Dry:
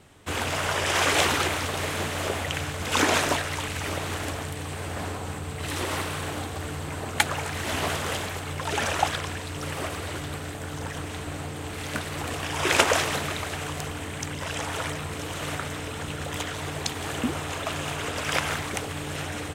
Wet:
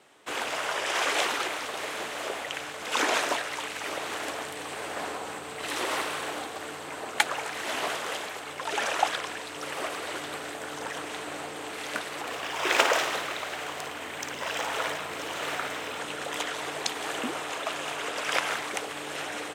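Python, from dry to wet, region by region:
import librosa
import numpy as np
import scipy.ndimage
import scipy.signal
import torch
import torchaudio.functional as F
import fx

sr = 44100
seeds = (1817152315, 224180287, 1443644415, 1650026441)

y = fx.chain(x, sr, fx.room_flutter(wall_m=9.5, rt60_s=0.4),
    fx.resample_linear(factor=2), at=(12.21, 15.98))
y = scipy.signal.sosfilt(scipy.signal.butter(2, 390.0, 'highpass', fs=sr, output='sos'), y)
y = fx.high_shelf(y, sr, hz=8100.0, db=-6.0)
y = fx.rider(y, sr, range_db=4, speed_s=2.0)
y = F.gain(torch.from_numpy(y), -2.0).numpy()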